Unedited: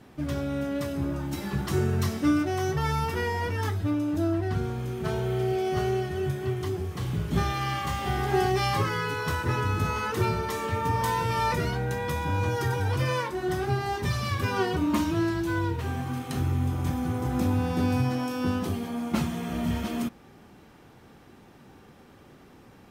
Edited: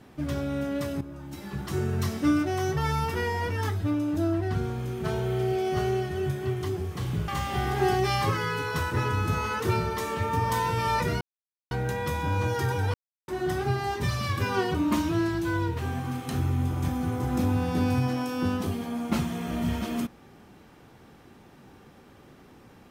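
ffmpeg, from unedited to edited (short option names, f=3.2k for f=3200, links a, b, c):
-filter_complex "[0:a]asplit=6[a][b][c][d][e][f];[a]atrim=end=1.01,asetpts=PTS-STARTPTS,afade=t=out:st=1.006:d=0.004:c=hsin:silence=0.223872[g];[b]atrim=start=1.01:end=7.282,asetpts=PTS-STARTPTS,afade=t=in:d=1.27:silence=0.223872[h];[c]atrim=start=7.798:end=11.73,asetpts=PTS-STARTPTS,afade=t=out:st=3.928:d=0.004:c=hsin,apad=pad_dur=0.5[i];[d]atrim=start=11.73:end=12.96,asetpts=PTS-STARTPTS,afade=t=in:d=0.004:c=hsin,afade=t=out:st=1.226:d=0.004:c=hsin[j];[e]atrim=start=12.96:end=13.3,asetpts=PTS-STARTPTS,volume=0[k];[f]atrim=start=13.3,asetpts=PTS-STARTPTS,afade=t=in:d=0.004:c=hsin[l];[g][h]concat=n=2:v=0:a=1[m];[i][j][k][l]concat=n=4:v=0:a=1[n];[m][n]acrossfade=d=0.004:c1=hsin:c2=hsin"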